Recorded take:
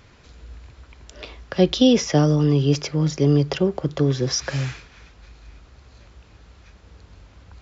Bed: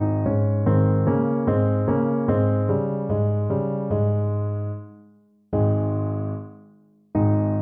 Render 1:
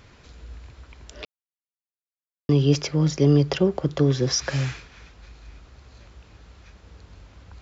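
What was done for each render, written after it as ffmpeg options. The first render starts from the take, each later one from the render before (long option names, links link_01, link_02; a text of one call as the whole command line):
ffmpeg -i in.wav -filter_complex "[0:a]asplit=3[link_01][link_02][link_03];[link_01]atrim=end=1.25,asetpts=PTS-STARTPTS,afade=type=out:start_time=1.246:duration=0.004:curve=hsin[link_04];[link_02]atrim=start=1.25:end=2.49,asetpts=PTS-STARTPTS,volume=0[link_05];[link_03]atrim=start=2.49,asetpts=PTS-STARTPTS,afade=type=in:duration=0.004:curve=hsin[link_06];[link_04][link_05][link_06]concat=n=3:v=0:a=1" out.wav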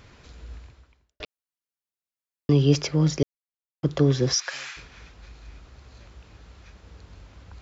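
ffmpeg -i in.wav -filter_complex "[0:a]asplit=3[link_01][link_02][link_03];[link_01]afade=type=out:start_time=4.33:duration=0.02[link_04];[link_02]highpass=1100,afade=type=in:start_time=4.33:duration=0.02,afade=type=out:start_time=4.76:duration=0.02[link_05];[link_03]afade=type=in:start_time=4.76:duration=0.02[link_06];[link_04][link_05][link_06]amix=inputs=3:normalize=0,asplit=4[link_07][link_08][link_09][link_10];[link_07]atrim=end=1.2,asetpts=PTS-STARTPTS,afade=type=out:start_time=0.56:duration=0.64:curve=qua[link_11];[link_08]atrim=start=1.2:end=3.23,asetpts=PTS-STARTPTS,afade=type=in:duration=0.004:curve=hsin,afade=type=out:start_time=2.026:duration=0.004:curve=hsin[link_12];[link_09]atrim=start=3.23:end=3.83,asetpts=PTS-STARTPTS,volume=0[link_13];[link_10]atrim=start=3.83,asetpts=PTS-STARTPTS,afade=type=in:duration=0.004:curve=hsin[link_14];[link_11][link_12][link_13][link_14]concat=n=4:v=0:a=1" out.wav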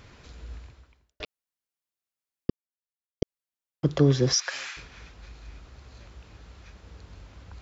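ffmpeg -i in.wav -filter_complex "[0:a]asettb=1/sr,asplit=3[link_01][link_02][link_03];[link_01]atrim=end=4.334[link_04];[link_02]atrim=start=4.33:end=4.77,asetpts=PTS-STARTPTS,afade=type=in:duration=0.004:curve=qsin,afade=type=out:start_time=0.436:duration=0.004:curve=qsin,highpass=210[link_05];[link_03]atrim=start=4.766[link_06];[link_04][link_05]acrossfade=duration=0.004:curve1=hsin:curve2=qsin[link_07];[link_07][link_06]acrossfade=duration=0.004:curve1=qsin:curve2=hsin,asplit=3[link_08][link_09][link_10];[link_08]atrim=end=2.5,asetpts=PTS-STARTPTS,afade=type=out:start_time=2.496:duration=0.004:curve=hsin[link_11];[link_09]atrim=start=2.5:end=3.22,asetpts=PTS-STARTPTS,volume=0[link_12];[link_10]atrim=start=3.22,asetpts=PTS-STARTPTS,afade=type=in:duration=0.004:curve=hsin[link_13];[link_11][link_12][link_13]concat=n=3:v=0:a=1" out.wav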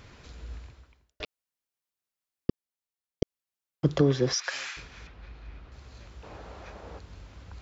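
ffmpeg -i in.wav -filter_complex "[0:a]asettb=1/sr,asplit=3[link_01][link_02][link_03];[link_01]atrim=end=4.014[link_04];[link_02]atrim=start=4.01:end=4.44,asetpts=PTS-STARTPTS,afade=type=in:duration=0.004:curve=qsin,afade=type=out:start_time=0.426:duration=0.004:curve=qsin,bass=frequency=250:gain=-6,treble=frequency=4000:gain=-7[link_05];[link_03]atrim=start=4.436[link_06];[link_04][link_05]acrossfade=duration=0.004:curve1=hsin:curve2=qsin[link_07];[link_07][link_06]acrossfade=duration=0.004:curve1=qsin:curve2=hsin,asettb=1/sr,asplit=3[link_08][link_09][link_10];[link_08]atrim=end=5.074[link_11];[link_09]atrim=start=5.07:end=5.72,asetpts=PTS-STARTPTS,afade=type=in:duration=0.004:curve=qsin,afade=type=out:start_time=0.646:duration=0.004:curve=qsin,lowpass=3100[link_12];[link_10]atrim=start=5.716[link_13];[link_11][link_12]acrossfade=duration=0.004:curve1=hsin:curve2=qsin[link_14];[link_14][link_13]acrossfade=duration=0.004:curve1=qsin:curve2=hsin,asettb=1/sr,asplit=3[link_15][link_16][link_17];[link_15]atrim=end=6.234[link_18];[link_16]atrim=start=6.23:end=6.99,asetpts=PTS-STARTPTS,afade=type=in:duration=0.004:curve=qsin,afade=type=out:start_time=0.756:duration=0.004:curve=qsin,equalizer=frequency=660:width_type=o:width=2.3:gain=14.5[link_19];[link_17]atrim=start=6.986[link_20];[link_18][link_19]acrossfade=duration=0.004:curve1=hsin:curve2=qsin[link_21];[link_21][link_20]acrossfade=duration=0.004:curve1=qsin:curve2=hsin" out.wav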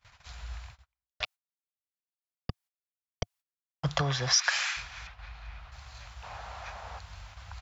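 ffmpeg -i in.wav -af "agate=range=-32dB:threshold=-49dB:ratio=16:detection=peak,firequalizer=gain_entry='entry(100,0);entry(320,-22);entry(710,6)':delay=0.05:min_phase=1" out.wav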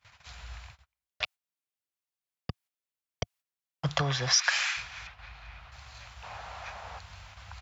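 ffmpeg -i in.wav -af "highpass=65,equalizer=frequency=2500:width=1.5:gain=2.5" out.wav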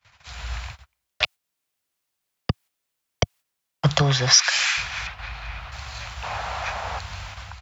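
ffmpeg -i in.wav -filter_complex "[0:a]acrossover=split=160|580|3100[link_01][link_02][link_03][link_04];[link_03]alimiter=limit=-21dB:level=0:latency=1:release=402[link_05];[link_01][link_02][link_05][link_04]amix=inputs=4:normalize=0,dynaudnorm=framelen=130:gausssize=5:maxgain=13dB" out.wav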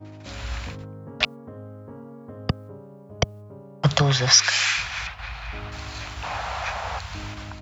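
ffmpeg -i in.wav -i bed.wav -filter_complex "[1:a]volume=-20dB[link_01];[0:a][link_01]amix=inputs=2:normalize=0" out.wav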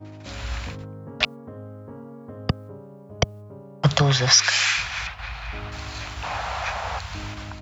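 ffmpeg -i in.wav -af "volume=1dB,alimiter=limit=-3dB:level=0:latency=1" out.wav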